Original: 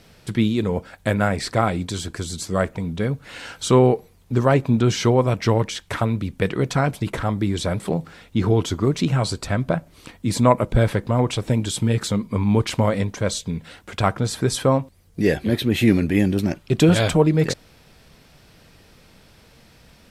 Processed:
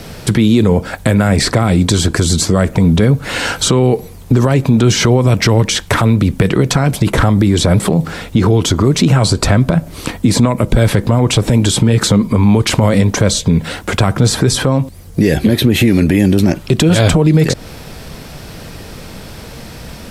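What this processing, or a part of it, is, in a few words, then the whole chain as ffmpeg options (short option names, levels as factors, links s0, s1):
mastering chain: -filter_complex "[0:a]equalizer=f=2700:t=o:w=2.2:g=-4,acrossover=split=310|2100|6800[s0][s1][s2][s3];[s0]acompressor=threshold=0.0708:ratio=4[s4];[s1]acompressor=threshold=0.0355:ratio=4[s5];[s2]acompressor=threshold=0.0158:ratio=4[s6];[s3]acompressor=threshold=0.00631:ratio=4[s7];[s4][s5][s6][s7]amix=inputs=4:normalize=0,acompressor=threshold=0.0447:ratio=2,alimiter=level_in=12.6:limit=0.891:release=50:level=0:latency=1,volume=0.891"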